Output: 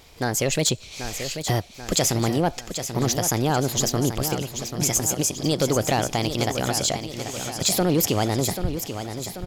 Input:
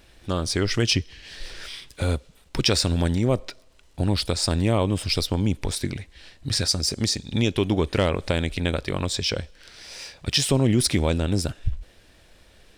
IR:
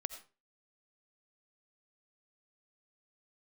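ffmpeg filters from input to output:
-filter_complex "[0:a]lowshelf=frequency=140:gain=-5.5,asplit=2[link_01][link_02];[link_02]alimiter=limit=-18dB:level=0:latency=1:release=440,volume=-3dB[link_03];[link_01][link_03]amix=inputs=2:normalize=0,asoftclip=type=tanh:threshold=-11.5dB,asplit=2[link_04][link_05];[link_05]aecho=0:1:1062|2124|3186|4248|5310|6372:0.355|0.188|0.0997|0.0528|0.028|0.0148[link_06];[link_04][link_06]amix=inputs=2:normalize=0,asetrate=59535,aresample=44100"

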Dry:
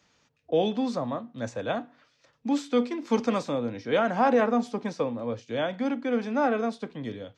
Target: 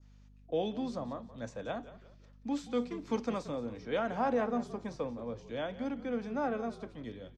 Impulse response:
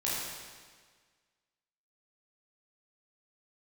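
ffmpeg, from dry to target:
-filter_complex "[0:a]aeval=exprs='val(0)+0.00398*(sin(2*PI*50*n/s)+sin(2*PI*2*50*n/s)/2+sin(2*PI*3*50*n/s)/3+sin(2*PI*4*50*n/s)/4+sin(2*PI*5*50*n/s)/5)':channel_layout=same,adynamicequalizer=threshold=0.00562:dfrequency=2600:dqfactor=0.81:tfrequency=2600:tqfactor=0.81:attack=5:release=100:ratio=0.375:range=2.5:mode=cutabove:tftype=bell,asplit=4[link_01][link_02][link_03][link_04];[link_02]adelay=177,afreqshift=-51,volume=-15dB[link_05];[link_03]adelay=354,afreqshift=-102,volume=-24.1dB[link_06];[link_04]adelay=531,afreqshift=-153,volume=-33.2dB[link_07];[link_01][link_05][link_06][link_07]amix=inputs=4:normalize=0,volume=-8.5dB"

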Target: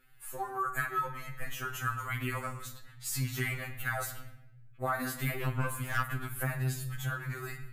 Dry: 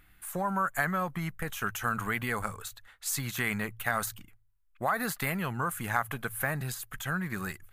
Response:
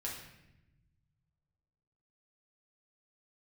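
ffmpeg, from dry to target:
-filter_complex "[0:a]asplit=2[link_01][link_02];[1:a]atrim=start_sample=2205[link_03];[link_02][link_03]afir=irnorm=-1:irlink=0,volume=-2dB[link_04];[link_01][link_04]amix=inputs=2:normalize=0,asplit=3[link_05][link_06][link_07];[link_05]afade=type=out:start_time=5.33:duration=0.02[link_08];[link_06]aeval=exprs='0.376*(cos(1*acos(clip(val(0)/0.376,-1,1)))-cos(1*PI/2))+0.0841*(cos(2*acos(clip(val(0)/0.376,-1,1)))-cos(2*PI/2))+0.075*(cos(4*acos(clip(val(0)/0.376,-1,1)))-cos(4*PI/2))+0.0106*(cos(8*acos(clip(val(0)/0.376,-1,1)))-cos(8*PI/2))':channel_layout=same,afade=type=in:start_time=5.33:duration=0.02,afade=type=out:start_time=6.07:duration=0.02[link_09];[link_07]afade=type=in:start_time=6.07:duration=0.02[link_10];[link_08][link_09][link_10]amix=inputs=3:normalize=0,afftfilt=real='re*2.45*eq(mod(b,6),0)':imag='im*2.45*eq(mod(b,6),0)':win_size=2048:overlap=0.75,volume=-5dB"

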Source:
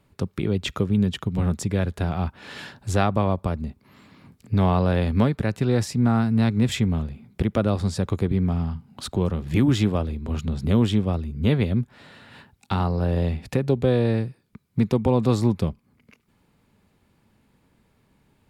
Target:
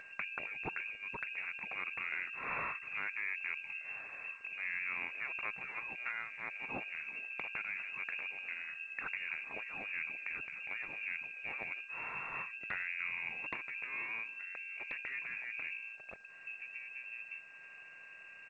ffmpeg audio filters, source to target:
ffmpeg -i in.wav -filter_complex "[0:a]asettb=1/sr,asplit=3[link_01][link_02][link_03];[link_01]atrim=end=2.054[link_04];[link_02]atrim=start=2.05:end=4.73,asetpts=PTS-STARTPTS,afade=type=in:duration=0.004:curve=qsin,afade=type=out:start_time=2.676:duration=0.004:curve=qsin,highshelf=frequency=2100:gain=-5.5[link_05];[link_03]atrim=start=4.726[link_06];[link_04][link_05]acrossfade=duration=0.004:curve1=hsin:curve2=qsin[link_07];[link_07][link_06]acrossfade=duration=0.004:curve1=qsin:curve2=hsin,bandreject=frequency=60:width_type=h:width=6,bandreject=frequency=120:width_type=h:width=6,bandreject=frequency=180:width_type=h:width=6,bandreject=frequency=240:width_type=h:width=6,bandreject=frequency=300:width_type=h:width=6,bandreject=frequency=360:width_type=h:width=6,bandreject=frequency=420:width_type=h:width=6,acompressor=threshold=-30dB:ratio=16,asoftclip=type=tanh:threshold=-24.5dB,asplit=2[link_08][link_09];[link_09]adelay=1691,volume=-16dB,highshelf=frequency=4000:gain=-38[link_10];[link_08][link_10]amix=inputs=2:normalize=0,lowpass=frequency=2400:width_type=q:width=0.5098,lowpass=frequency=2400:width_type=q:width=0.6013,lowpass=frequency=2400:width_type=q:width=0.9,lowpass=frequency=2400:width_type=q:width=2.563,afreqshift=-2800,equalizer=frequency=150:width_type=o:width=0.72:gain=5,alimiter=level_in=5.5dB:limit=-24dB:level=0:latency=1:release=21,volume=-5.5dB,aeval=exprs='val(0)+0.000794*sin(2*PI*1600*n/s)':channel_layout=same,afftfilt=real='re*lt(hypot(re,im),0.0562)':imag='im*lt(hypot(re,im),0.0562)':win_size=1024:overlap=0.75,acompressor=mode=upward:threshold=-52dB:ratio=2.5,volume=4.5dB" -ar 16000 -c:a g722 out.g722

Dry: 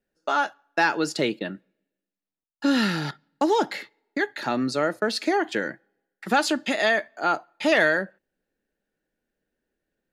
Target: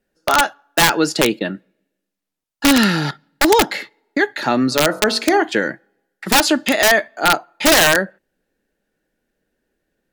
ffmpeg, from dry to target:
ffmpeg -i in.wav -filter_complex "[0:a]aeval=exprs='(mod(4.47*val(0)+1,2)-1)/4.47':channel_layout=same,asplit=3[link_01][link_02][link_03];[link_01]afade=type=out:start_time=4.7:duration=0.02[link_04];[link_02]bandreject=frequency=46.17:width_type=h:width=4,bandreject=frequency=92.34:width_type=h:width=4,bandreject=frequency=138.51:width_type=h:width=4,bandreject=frequency=184.68:width_type=h:width=4,bandreject=frequency=230.85:width_type=h:width=4,bandreject=frequency=277.02:width_type=h:width=4,bandreject=frequency=323.19:width_type=h:width=4,bandreject=frequency=369.36:width_type=h:width=4,bandreject=frequency=415.53:width_type=h:width=4,bandreject=frequency=461.7:width_type=h:width=4,bandreject=frequency=507.87:width_type=h:width=4,bandreject=frequency=554.04:width_type=h:width=4,bandreject=frequency=600.21:width_type=h:width=4,bandreject=frequency=646.38:width_type=h:width=4,bandreject=frequency=692.55:width_type=h:width=4,bandreject=frequency=738.72:width_type=h:width=4,bandreject=frequency=784.89:width_type=h:width=4,bandreject=frequency=831.06:width_type=h:width=4,bandreject=frequency=877.23:width_type=h:width=4,bandreject=frequency=923.4:width_type=h:width=4,bandreject=frequency=969.57:width_type=h:width=4,bandreject=frequency=1015.74:width_type=h:width=4,bandreject=frequency=1061.91:width_type=h:width=4,bandreject=frequency=1108.08:width_type=h:width=4,bandreject=frequency=1154.25:width_type=h:width=4,bandreject=frequency=1200.42:width_type=h:width=4,bandreject=frequency=1246.59:width_type=h:width=4,bandreject=frequency=1292.76:width_type=h:width=4,bandreject=frequency=1338.93:width_type=h:width=4,bandreject=frequency=1385.1:width_type=h:width=4,bandreject=frequency=1431.27:width_type=h:width=4,bandreject=frequency=1477.44:width_type=h:width=4,bandreject=frequency=1523.61:width_type=h:width=4,afade=type=in:start_time=4.7:duration=0.02,afade=type=out:start_time=5.42:duration=0.02[link_05];[link_03]afade=type=in:start_time=5.42:duration=0.02[link_06];[link_04][link_05][link_06]amix=inputs=3:normalize=0,volume=8.5dB" -ar 44100 -c:a libvorbis -b:a 128k out.ogg

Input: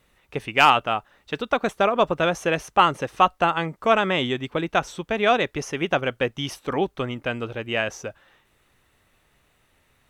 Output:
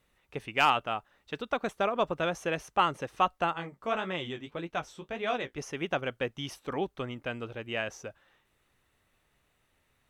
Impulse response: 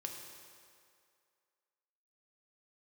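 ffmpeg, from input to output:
-filter_complex "[0:a]asettb=1/sr,asplit=3[link_01][link_02][link_03];[link_01]atrim=end=3.534[link_04];[link_02]atrim=start=3.53:end=5.58,asetpts=PTS-STARTPTS,afade=type=in:duration=0.004:curve=qsin,afade=type=out:start_time=2.046:duration=0.004:curve=qsin,flanger=delay=9.9:depth=9.7:regen=-30:speed=1.7:shape=triangular[link_05];[link_03]atrim=start=5.576[link_06];[link_04][link_05]acrossfade=duration=0.004:curve1=hsin:curve2=qsin[link_07];[link_07][link_06]acrossfade=duration=0.004:curve1=qsin:curve2=hsin,volume=-8.5dB"

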